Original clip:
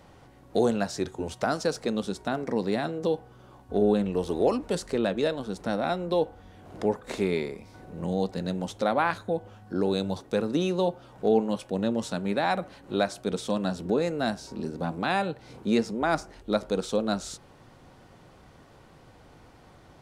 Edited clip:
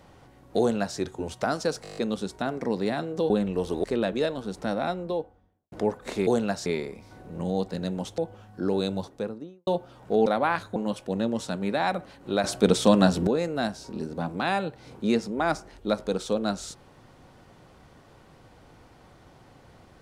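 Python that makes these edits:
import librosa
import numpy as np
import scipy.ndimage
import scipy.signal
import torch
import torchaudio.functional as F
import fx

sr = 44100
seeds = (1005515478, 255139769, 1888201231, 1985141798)

y = fx.studio_fade_out(x, sr, start_s=5.75, length_s=0.99)
y = fx.studio_fade_out(y, sr, start_s=10.01, length_s=0.79)
y = fx.edit(y, sr, fx.duplicate(start_s=0.59, length_s=0.39, to_s=7.29),
    fx.stutter(start_s=1.83, slice_s=0.02, count=8),
    fx.cut(start_s=3.16, length_s=0.73),
    fx.cut(start_s=4.43, length_s=0.43),
    fx.move(start_s=8.81, length_s=0.5, to_s=11.39),
    fx.clip_gain(start_s=13.07, length_s=0.83, db=9.5), tone=tone)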